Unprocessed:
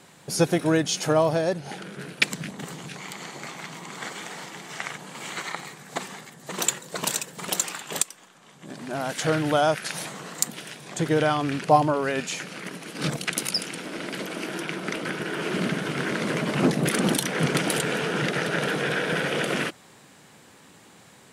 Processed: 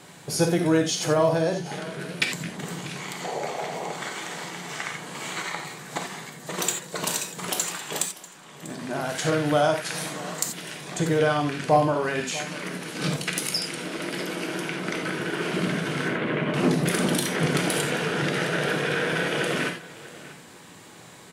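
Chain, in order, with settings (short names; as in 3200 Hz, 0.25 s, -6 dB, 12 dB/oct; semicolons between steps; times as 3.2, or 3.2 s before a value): 3.24–3.92 band shelf 580 Hz +13.5 dB 1.3 oct; 16.08–16.54 steep low-pass 3300 Hz; in parallel at 0 dB: compressor, threshold -38 dBFS, peak gain reduction 23.5 dB; on the sum: soft clip -6 dBFS, distortion -26 dB; echo 0.642 s -18.5 dB; non-linear reverb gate 0.11 s flat, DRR 3 dB; gain -3 dB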